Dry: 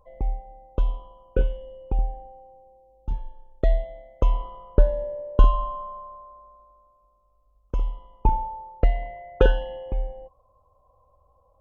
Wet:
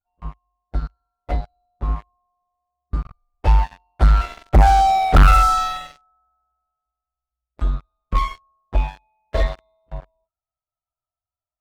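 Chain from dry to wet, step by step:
phase-vocoder pitch shift without resampling +4.5 semitones
source passing by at 0:05.05, 17 m/s, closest 9.8 metres
leveller curve on the samples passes 5

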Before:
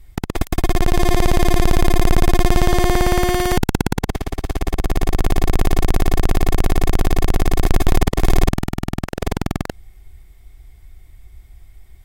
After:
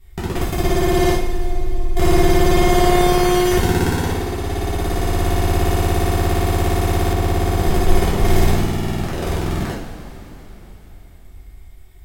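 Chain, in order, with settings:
0:01.12–0:01.97: expanding power law on the bin magnitudes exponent 2.3
coupled-rooms reverb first 0.57 s, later 4 s, from −16 dB, DRR −8 dB
0:07.13–0:08.25: one half of a high-frequency compander decoder only
level −7 dB

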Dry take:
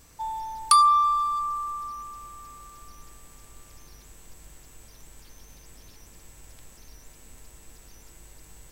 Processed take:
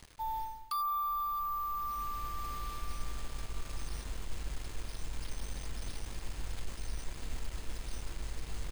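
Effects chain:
bit-depth reduction 8 bits, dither none
reversed playback
downward compressor 5 to 1, threshold −41 dBFS, peak gain reduction 24.5 dB
reversed playback
low-pass filter 7,800 Hz
low-shelf EQ 75 Hz +9.5 dB
bad sample-rate conversion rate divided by 3×, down filtered, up hold
notch filter 5,700 Hz, Q 15
level +5 dB

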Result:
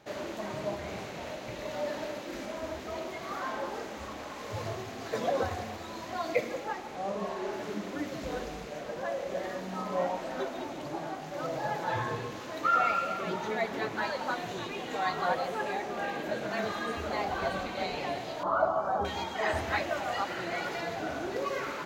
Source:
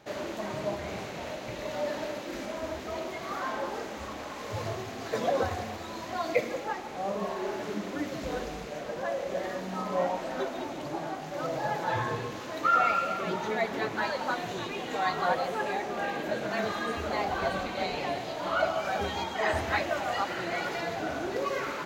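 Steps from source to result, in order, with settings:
0:01.42–0:02.21: floating-point word with a short mantissa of 6 bits
0:06.96–0:07.53: Bessel low-pass filter 12,000 Hz
0:18.43–0:19.05: high shelf with overshoot 1,600 Hz −13 dB, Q 3
level −2 dB

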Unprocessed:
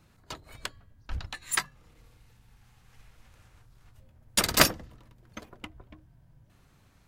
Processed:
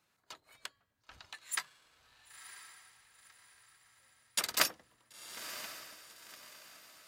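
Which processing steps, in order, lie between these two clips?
high-pass filter 960 Hz 6 dB per octave
feedback delay with all-pass diffusion 992 ms, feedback 40%, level −11 dB
level −7.5 dB

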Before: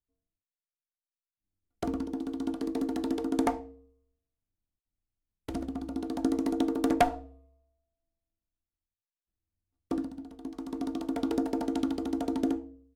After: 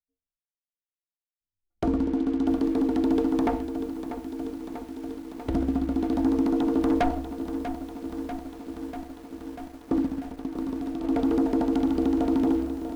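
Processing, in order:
RIAA equalisation playback
noise reduction from a noise print of the clip's start 14 dB
low-shelf EQ 170 Hz −11.5 dB
leveller curve on the samples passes 2
speech leveller 2 s
brickwall limiter −17.5 dBFS, peak gain reduction 5.5 dB
0:10.06–0:11.04: downward compressor, threshold −29 dBFS, peak gain reduction 8 dB
feedback echo at a low word length 642 ms, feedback 80%, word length 8 bits, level −10.5 dB

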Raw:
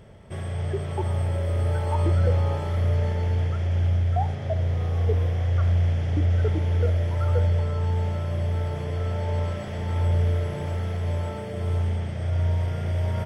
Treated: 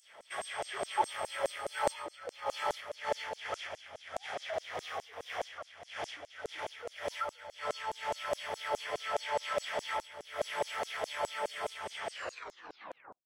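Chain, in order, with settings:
turntable brake at the end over 1.17 s
compressor whose output falls as the input rises −24 dBFS, ratio −0.5
auto-filter high-pass saw down 4.8 Hz 550–7,600 Hz

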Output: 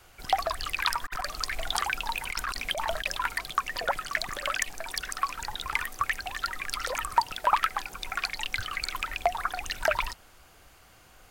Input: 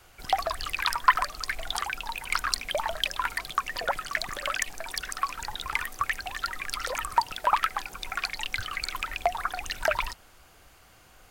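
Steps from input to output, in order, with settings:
0:01.01–0:03.20: compressor whose output falls as the input rises −30 dBFS, ratio −0.5

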